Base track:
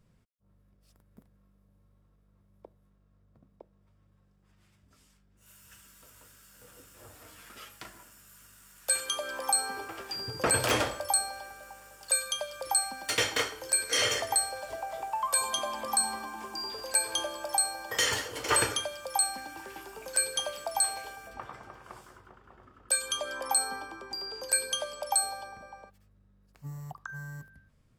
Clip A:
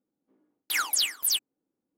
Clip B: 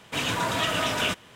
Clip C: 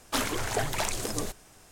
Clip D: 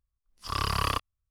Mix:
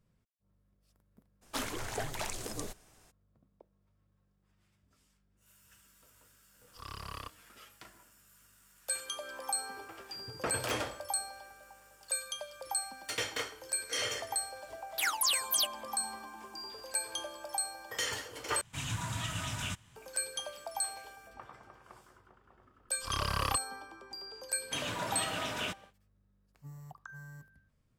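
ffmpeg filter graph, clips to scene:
-filter_complex "[4:a]asplit=2[s0][s1];[2:a]asplit=2[s2][s3];[0:a]volume=0.422[s4];[s2]firequalizer=gain_entry='entry(120,0);entry(190,-10);entry(450,-25);entry(840,-14);entry(4700,-12);entry(7200,-4);entry(14000,-11)':delay=0.05:min_phase=1[s5];[s4]asplit=2[s6][s7];[s6]atrim=end=18.614[s8];[s5]atrim=end=1.35[s9];[s7]atrim=start=19.956[s10];[3:a]atrim=end=1.71,asetpts=PTS-STARTPTS,volume=0.398,afade=t=in:d=0.02,afade=t=out:st=1.69:d=0.02,adelay=1410[s11];[s0]atrim=end=1.3,asetpts=PTS-STARTPTS,volume=0.158,afade=t=in:d=0.004:c=hsin,afade=t=out:st=1.296:d=0.004:c=hsin,adelay=6300[s12];[1:a]atrim=end=1.97,asetpts=PTS-STARTPTS,volume=0.596,afade=t=in:d=0.004:c=hsin,afade=t=out:st=1.966:d=0.004:c=hsin,adelay=629748S[s13];[s1]atrim=end=1.3,asetpts=PTS-STARTPTS,volume=0.562,afade=t=in:d=0.004:c=hsin,afade=t=out:st=1.296:d=0.004:c=hsin,adelay=22580[s14];[s3]atrim=end=1.35,asetpts=PTS-STARTPTS,volume=0.299,afade=t=in:d=0.1,afade=t=out:st=1.25:d=0.1,adelay=24590[s15];[s8][s9]acrossfade=d=0.004:c1=hsin:c2=hsin[s16];[s16][s10]acrossfade=d=0.004:c1=hsin:c2=hsin[s17];[s17][s11][s12][s13][s14][s15]amix=inputs=6:normalize=0"

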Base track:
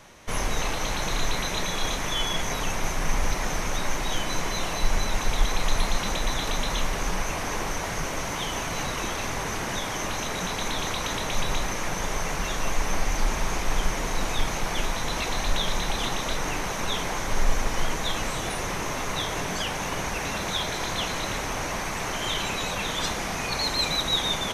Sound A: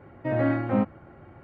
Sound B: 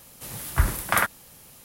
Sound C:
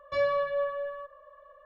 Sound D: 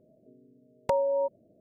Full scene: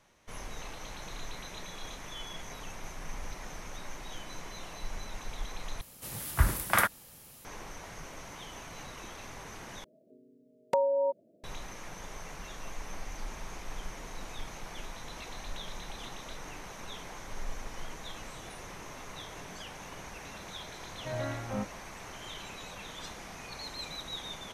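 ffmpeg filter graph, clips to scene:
-filter_complex "[0:a]volume=0.168[s0];[4:a]highpass=200[s1];[1:a]equalizer=f=310:w=2.8:g=-13.5[s2];[s0]asplit=3[s3][s4][s5];[s3]atrim=end=5.814[s6];[2:a]atrim=end=1.64,asetpts=PTS-STARTPTS,volume=0.668[s7];[s4]atrim=start=7.446:end=9.844[s8];[s1]atrim=end=1.6,asetpts=PTS-STARTPTS,volume=0.891[s9];[s5]atrim=start=11.436[s10];[s2]atrim=end=1.43,asetpts=PTS-STARTPTS,volume=0.355,afade=t=in:d=0.004:c=hsin,afade=t=out:st=1.426:d=0.004:c=hsin,adelay=20800[s11];[s6][s7]acrossfade=d=0.004:c1=hsin:c2=hsin[s12];[s12][s8]acrossfade=d=0.004:c1=hsin:c2=hsin[s13];[s13][s9]acrossfade=d=0.004:c1=hsin:c2=hsin[s14];[s14][s10]acrossfade=d=0.004:c1=hsin:c2=hsin[s15];[s15][s11]amix=inputs=2:normalize=0"

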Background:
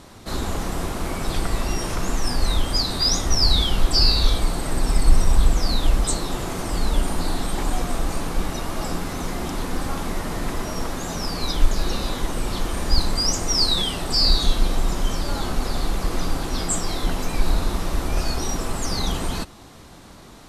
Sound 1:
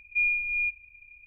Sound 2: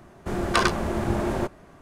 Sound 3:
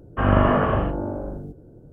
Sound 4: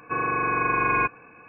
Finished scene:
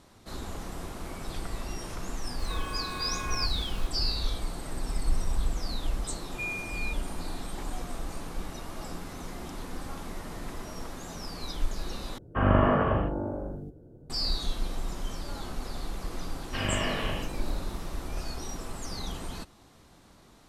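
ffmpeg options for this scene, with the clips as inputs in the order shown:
-filter_complex "[3:a]asplit=2[s0][s1];[0:a]volume=0.251[s2];[4:a]aeval=exprs='val(0)+0.5*0.0335*sgn(val(0))':c=same[s3];[s1]aexciter=amount=6:drive=9.1:freq=2000[s4];[s2]asplit=2[s5][s6];[s5]atrim=end=12.184[s7];[s0]atrim=end=1.92,asetpts=PTS-STARTPTS,volume=0.596[s8];[s6]atrim=start=14.096[s9];[s3]atrim=end=1.48,asetpts=PTS-STARTPTS,volume=0.158,afade=t=in:d=0.004:c=hsin,afade=t=out:st=1.476:d=0.004:c=hsin,adelay=2390[s10];[1:a]atrim=end=1.26,asetpts=PTS-STARTPTS,volume=0.316,afade=t=in:d=0.004:c=hsin,afade=t=out:st=1.256:d=0.004:c=hsin,adelay=6230[s11];[s4]atrim=end=1.92,asetpts=PTS-STARTPTS,volume=0.211,afade=t=in:d=0.004:c=hsin,afade=t=out:st=1.916:d=0.004:c=hsin,adelay=721476S[s12];[s7][s8]acrossfade=d=0.004:c1=hsin:c2=hsin[s13];[s13][s9]acrossfade=d=0.004:c1=hsin:c2=hsin[s14];[s14][s10][s11][s12]amix=inputs=4:normalize=0"

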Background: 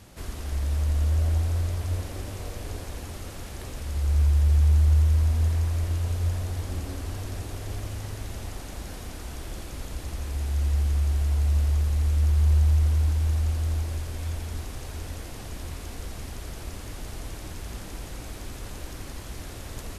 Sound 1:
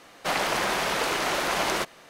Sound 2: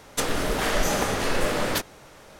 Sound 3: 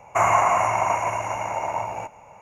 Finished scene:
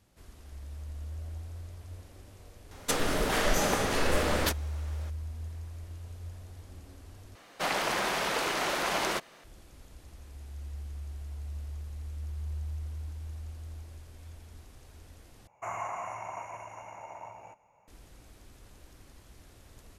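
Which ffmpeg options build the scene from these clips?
-filter_complex "[0:a]volume=0.15,asplit=3[s0][s1][s2];[s0]atrim=end=7.354[s3];[1:a]atrim=end=2.09,asetpts=PTS-STARTPTS,volume=0.631[s4];[s1]atrim=start=9.436:end=15.474[s5];[3:a]atrim=end=2.41,asetpts=PTS-STARTPTS,volume=0.126[s6];[s2]atrim=start=17.876[s7];[2:a]atrim=end=2.39,asetpts=PTS-STARTPTS,volume=0.708,afade=t=in:d=0.004:c=hsin,afade=t=out:st=2.386:d=0.004:c=hsin,adelay=2710[s8];[s3][s4]acrossfade=d=0.004:c1=hsin:c2=hsin[s9];[s9][s5]acrossfade=d=0.004:c1=hsin:c2=hsin[s10];[s10][s6]acrossfade=d=0.004:c1=hsin:c2=hsin[s11];[s11][s7]acrossfade=d=0.004:c1=hsin:c2=hsin[s12];[s12][s8]amix=inputs=2:normalize=0"

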